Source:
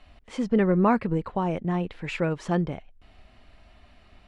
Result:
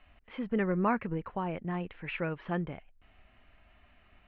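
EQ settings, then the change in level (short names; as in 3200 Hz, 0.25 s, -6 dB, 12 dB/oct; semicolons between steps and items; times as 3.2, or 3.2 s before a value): ladder low-pass 3600 Hz, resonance 40%; air absorption 250 m; bell 1600 Hz +5 dB 1.4 oct; 0.0 dB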